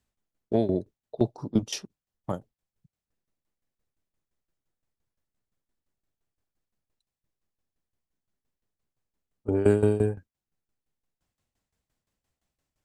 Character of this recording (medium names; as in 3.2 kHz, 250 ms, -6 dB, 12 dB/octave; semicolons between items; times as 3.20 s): tremolo saw down 5.8 Hz, depth 85%